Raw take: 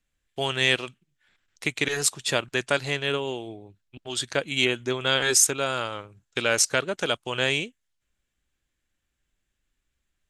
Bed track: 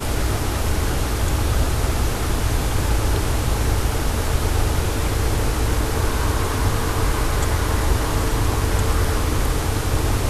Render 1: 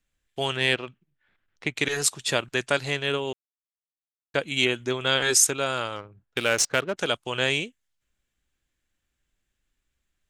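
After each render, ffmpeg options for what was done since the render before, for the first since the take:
-filter_complex "[0:a]asettb=1/sr,asplit=3[a][b][c];[a]atrim=end=0.574[d];[b]atrim=start=0.57:end=1.77,asetpts=PTS-STARTPTS,afade=t=in:d=0.004:c=qsin,afade=t=out:st=1.196:d=0.004:c=qsin,adynamicsmooth=sensitivity=0.5:basefreq=2.7k[e];[c]atrim=start=1.766[f];[d][e]acrossfade=d=0.004:c1=hsin:c2=qsin[g];[g][f]acrossfade=d=0.004:c1=qsin:c2=hsin,asettb=1/sr,asplit=3[h][i][j];[h]atrim=end=5.964[k];[i]atrim=start=5.96:end=6.97,asetpts=PTS-STARTPTS,afade=t=in:d=0.004:c=qsin,afade=t=out:st=1.006:d=0.004:c=qsin,adynamicsmooth=sensitivity=7:basefreq=1.9k[l];[j]atrim=start=6.966[m];[k][l]acrossfade=d=0.004:c1=hsin:c2=qsin[n];[n][m]acrossfade=d=0.004:c1=qsin:c2=hsin,asplit=3[o][p][q];[o]atrim=end=3.33,asetpts=PTS-STARTPTS,afade=t=out:st=3.326:d=0.004:c=hsin[r];[p]atrim=start=3.33:end=4.34,asetpts=PTS-STARTPTS,volume=0[s];[q]atrim=start=4.34,asetpts=PTS-STARTPTS,afade=t=in:d=0.004:c=hsin[t];[r][s][t]concat=n=3:v=0:a=1"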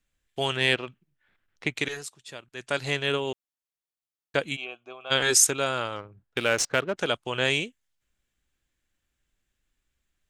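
-filter_complex "[0:a]asplit=3[a][b][c];[a]afade=t=out:st=4.55:d=0.02[d];[b]asplit=3[e][f][g];[e]bandpass=f=730:t=q:w=8,volume=0dB[h];[f]bandpass=f=1.09k:t=q:w=8,volume=-6dB[i];[g]bandpass=f=2.44k:t=q:w=8,volume=-9dB[j];[h][i][j]amix=inputs=3:normalize=0,afade=t=in:st=4.55:d=0.02,afade=t=out:st=5.1:d=0.02[k];[c]afade=t=in:st=5.1:d=0.02[l];[d][k][l]amix=inputs=3:normalize=0,asettb=1/sr,asplit=3[m][n][o];[m]atrim=end=5.694[p];[n]atrim=start=5.69:end=7.45,asetpts=PTS-STARTPTS,afade=t=in:d=0.004:c=qsin,afade=t=out:st=1.756:d=0.004:c=qsin,highshelf=f=4k:g=-5.5[q];[o]atrim=start=7.446[r];[p][q]acrossfade=d=0.004:c1=hsin:c2=qsin[s];[s][r]acrossfade=d=0.004:c1=qsin:c2=hsin,asplit=3[t][u][v];[t]atrim=end=2.06,asetpts=PTS-STARTPTS,afade=t=out:st=1.71:d=0.35:silence=0.141254[w];[u]atrim=start=2.06:end=2.54,asetpts=PTS-STARTPTS,volume=-17dB[x];[v]atrim=start=2.54,asetpts=PTS-STARTPTS,afade=t=in:d=0.35:silence=0.141254[y];[w][x][y]concat=n=3:v=0:a=1"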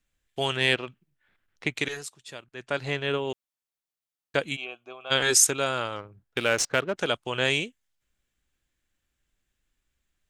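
-filter_complex "[0:a]asettb=1/sr,asplit=3[a][b][c];[a]atrim=end=2.444[d];[b]atrim=start=2.44:end=3.3,asetpts=PTS-STARTPTS,afade=t=in:d=0.004:c=qsin,afade=t=out:st=0.856:d=0.004:c=qsin,lowpass=f=2.5k:p=1[e];[c]atrim=start=3.296[f];[d][e]acrossfade=d=0.004:c1=hsin:c2=qsin[g];[g][f]acrossfade=d=0.004:c1=qsin:c2=hsin"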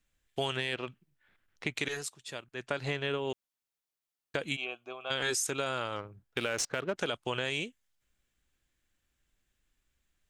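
-af "alimiter=limit=-14.5dB:level=0:latency=1:release=34,acompressor=threshold=-28dB:ratio=6"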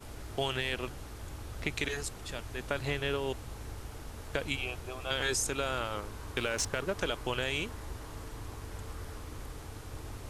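-filter_complex "[1:a]volume=-23dB[a];[0:a][a]amix=inputs=2:normalize=0"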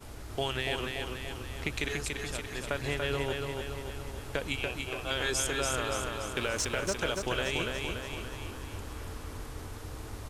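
-af "aecho=1:1:287|574|861|1148|1435|1722|2009|2296:0.631|0.353|0.198|0.111|0.0621|0.0347|0.0195|0.0109"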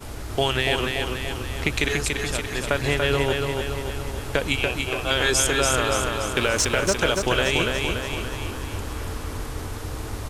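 -af "volume=10dB"

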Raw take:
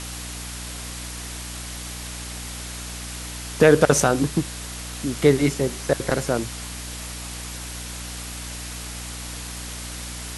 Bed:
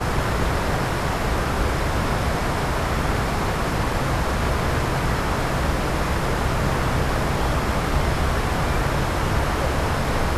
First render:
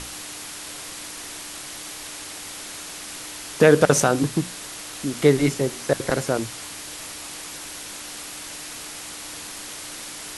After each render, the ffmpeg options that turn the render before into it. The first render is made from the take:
-af "bandreject=f=60:t=h:w=6,bandreject=f=120:t=h:w=6,bandreject=f=180:t=h:w=6,bandreject=f=240:t=h:w=6"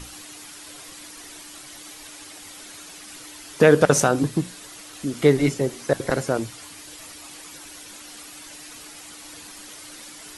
-af "afftdn=nr=9:nf=-37"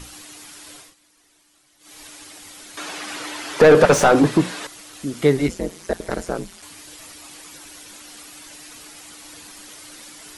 -filter_complex "[0:a]asettb=1/sr,asplit=3[a][b][c];[a]atrim=end=2.774[d];[b]atrim=start=2.77:end=4.67,asetpts=PTS-STARTPTS,afade=t=in:d=0.004:c=qsin,afade=t=out:st=1.896:d=0.004:c=qsin,asplit=2[e][f];[f]highpass=f=720:p=1,volume=25dB,asoftclip=type=tanh:threshold=-2dB[g];[e][g]amix=inputs=2:normalize=0,lowpass=f=1.3k:p=1,volume=-6dB[h];[c]atrim=start=4.666[i];[d][h]acrossfade=d=0.004:c1=hsin:c2=qsin[j];[j][i]acrossfade=d=0.004:c1=qsin:c2=hsin,asplit=3[k][l][m];[k]afade=t=out:st=5.47:d=0.02[n];[l]aeval=exprs='val(0)*sin(2*PI*88*n/s)':c=same,afade=t=in:st=5.47:d=0.02,afade=t=out:st=6.61:d=0.02[o];[m]afade=t=in:st=6.61:d=0.02[p];[n][o][p]amix=inputs=3:normalize=0,asplit=3[q][r][s];[q]atrim=end=0.95,asetpts=PTS-STARTPTS,afade=t=out:st=0.75:d=0.2:silence=0.125893[t];[r]atrim=start=0.95:end=1.79,asetpts=PTS-STARTPTS,volume=-18dB[u];[s]atrim=start=1.79,asetpts=PTS-STARTPTS,afade=t=in:d=0.2:silence=0.125893[v];[t][u][v]concat=n=3:v=0:a=1"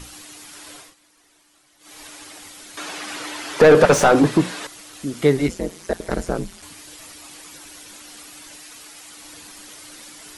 -filter_complex "[0:a]asettb=1/sr,asplit=3[a][b][c];[a]atrim=end=0.534[d];[b]atrim=start=0.53:end=2.48,asetpts=PTS-STARTPTS,afade=t=in:d=0.004:c=qsin,afade=t=out:st=1.946:d=0.004:c=qsin,equalizer=f=900:w=0.4:g=3.5[e];[c]atrim=start=2.476[f];[d][e]acrossfade=d=0.004:c1=hsin:c2=qsin[g];[g][f]acrossfade=d=0.004:c1=qsin:c2=hsin,asettb=1/sr,asplit=3[h][i][j];[h]atrim=end=6.114[k];[i]atrim=start=6.11:end=6.73,asetpts=PTS-STARTPTS,afade=t=in:d=0.004:c=qsin,afade=t=out:st=0.616:d=0.004:c=qsin,lowshelf=f=220:g=7.5[l];[j]atrim=start=6.726[m];[k][l]acrossfade=d=0.004:c1=hsin:c2=qsin[n];[n][m]acrossfade=d=0.004:c1=qsin:c2=hsin,asettb=1/sr,asplit=3[o][p][q];[o]atrim=end=8.594[r];[p]atrim=start=8.59:end=9.17,asetpts=PTS-STARTPTS,afade=t=in:d=0.004:c=qsin,afade=t=out:st=0.576:d=0.004:c=qsin,lowshelf=f=400:g=-6[s];[q]atrim=start=9.166[t];[r][s]acrossfade=d=0.004:c1=hsin:c2=qsin[u];[u][t]acrossfade=d=0.004:c1=qsin:c2=hsin"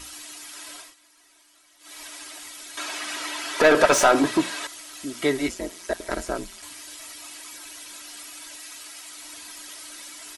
-af "lowshelf=f=460:g=-11.5,aecho=1:1:3.1:0.52"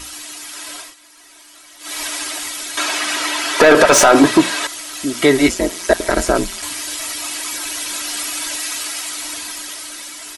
-af "dynaudnorm=f=210:g=13:m=9dB,alimiter=level_in=8dB:limit=-1dB:release=50:level=0:latency=1"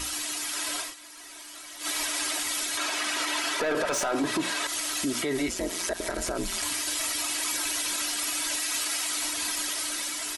-af "acompressor=threshold=-22dB:ratio=3,alimiter=limit=-20dB:level=0:latency=1:release=43"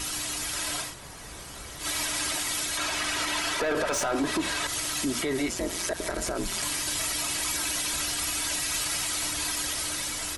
-filter_complex "[1:a]volume=-23.5dB[a];[0:a][a]amix=inputs=2:normalize=0"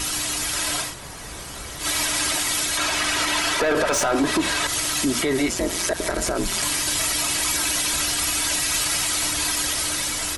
-af "volume=6.5dB"

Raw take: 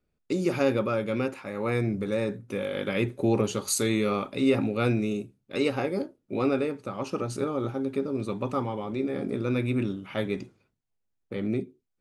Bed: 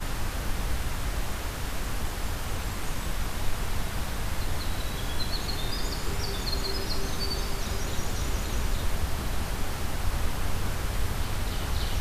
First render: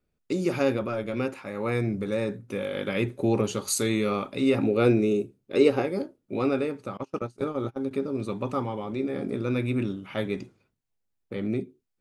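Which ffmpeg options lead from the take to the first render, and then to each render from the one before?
-filter_complex "[0:a]asplit=3[a][b][c];[a]afade=t=out:st=0.74:d=0.02[d];[b]tremolo=f=120:d=0.571,afade=t=in:st=0.74:d=0.02,afade=t=out:st=1.16:d=0.02[e];[c]afade=t=in:st=1.16:d=0.02[f];[d][e][f]amix=inputs=3:normalize=0,asettb=1/sr,asplit=3[g][h][i];[g]atrim=end=4.634[j];[h]atrim=start=4.63:end=5.82,asetpts=PTS-STARTPTS,afade=t=in:d=0.004:c=qsin,afade=t=out:st=1.186:d=0.004:c=qsin,equalizer=f=400:w=1.5:g=9[k];[i]atrim=start=5.816[l];[j][k]acrossfade=d=0.004:c1=hsin:c2=qsin[m];[m][l]acrossfade=d=0.004:c1=qsin:c2=hsin,asettb=1/sr,asplit=3[n][o][p];[n]atrim=end=6.974[q];[o]atrim=start=6.97:end=7.91,asetpts=PTS-STARTPTS,afade=t=in:d=0.004:c=qsin,afade=t=out:st=0.936:d=0.004:c=qsin,agate=range=-27dB:threshold=-31dB:ratio=16:release=100:detection=peak[r];[p]atrim=start=7.906[s];[q][r]acrossfade=d=0.004:c1=hsin:c2=qsin[t];[t][s]acrossfade=d=0.004:c1=qsin:c2=hsin"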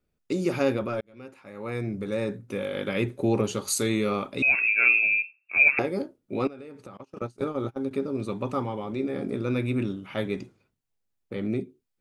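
-filter_complex "[0:a]asettb=1/sr,asplit=3[a][b][c];[a]atrim=end=4.424[d];[b]atrim=start=4.42:end=5.79,asetpts=PTS-STARTPTS,afade=t=in:d=0.004:c=qsin,afade=t=out:st=1.366:d=0.004:c=qsin,lowpass=f=2.4k:t=q:w=0.5098,lowpass=f=2.4k:t=q:w=0.6013,lowpass=f=2.4k:t=q:w=0.9,lowpass=f=2.4k:t=q:w=2.563,afreqshift=-2800[e];[c]atrim=start=5.786[f];[d][e]acrossfade=d=0.004:c1=hsin:c2=qsin[g];[g][f]acrossfade=d=0.004:c1=qsin:c2=hsin,asettb=1/sr,asplit=3[h][i][j];[h]atrim=end=6.474[k];[i]atrim=start=6.47:end=7.17,asetpts=PTS-STARTPTS,afade=t=in:d=0.004:c=qsin,afade=t=out:st=0.696:d=0.004:c=qsin,acompressor=threshold=-38dB:ratio=10:attack=3.2:release=140:knee=1:detection=peak[l];[j]atrim=start=7.166[m];[k][l]acrossfade=d=0.004:c1=hsin:c2=qsin[n];[n][m]acrossfade=d=0.004:c1=qsin:c2=hsin,asplit=2[o][p];[o]atrim=end=1.01,asetpts=PTS-STARTPTS,afade=t=out:st=1.006:d=0.004:c=hsin[q];[p]atrim=start=1.01,asetpts=PTS-STARTPTS,afade=t=in:d=1.29[r];[q][r]concat=n=2:v=0:a=1"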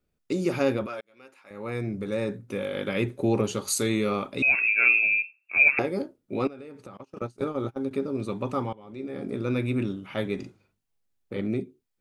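-filter_complex "[0:a]asettb=1/sr,asplit=3[a][b][c];[a]atrim=end=0.864[d];[b]atrim=start=0.86:end=1.51,asetpts=PTS-STARTPTS,afade=t=in:d=0.004:c=qsin,afade=t=out:st=0.646:d=0.004:c=qsin,highpass=f=1k:p=1[e];[c]atrim=start=1.506[f];[d][e]acrossfade=d=0.004:c1=hsin:c2=qsin[g];[g][f]acrossfade=d=0.004:c1=qsin:c2=hsin,asettb=1/sr,asplit=3[h][i][j];[h]atrim=end=10.354[k];[i]atrim=start=10.35:end=11.41,asetpts=PTS-STARTPTS,afade=t=in:d=0.004:c=qsin,afade=t=out:st=1.056:d=0.004:c=qsin,asplit=2[l][m];[m]adelay=40,volume=-5dB[n];[l][n]amix=inputs=2:normalize=0,atrim=end_sample=46746[o];[j]atrim=start=11.406[p];[k][o]acrossfade=d=0.004:c1=hsin:c2=qsin[q];[q][p]acrossfade=d=0.004:c1=qsin:c2=hsin,asplit=2[r][s];[r]atrim=end=8.73,asetpts=PTS-STARTPTS,afade=t=out:st=8.726:d=0.004:c=hsin:silence=0.0891251[t];[s]atrim=start=8.73,asetpts=PTS-STARTPTS,afade=t=in:d=0.73:silence=0.0891251[u];[t][u]concat=n=2:v=0:a=1"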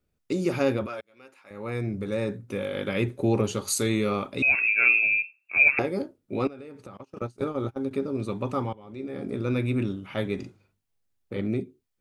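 -af "equalizer=f=88:w=2.1:g=5.5"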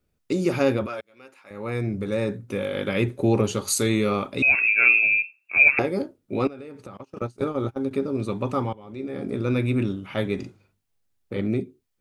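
-af "volume=3dB"

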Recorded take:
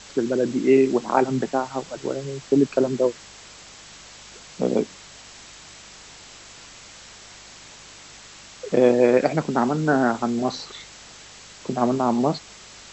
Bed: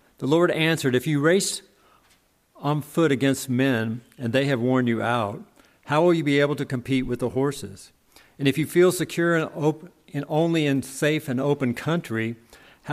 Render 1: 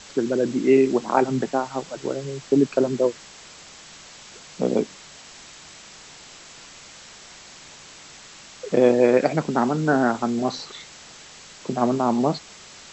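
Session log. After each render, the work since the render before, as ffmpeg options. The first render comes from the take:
-af "bandreject=f=50:t=h:w=4,bandreject=f=100:t=h:w=4"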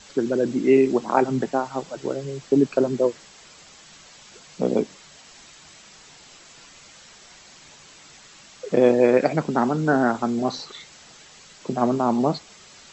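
-af "afftdn=nr=6:nf=-45"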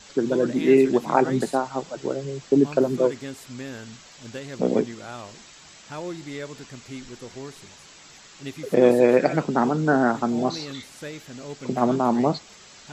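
-filter_complex "[1:a]volume=-14.5dB[a];[0:a][a]amix=inputs=2:normalize=0"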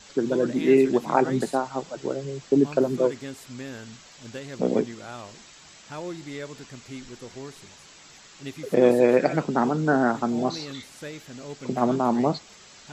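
-af "volume=-1.5dB"

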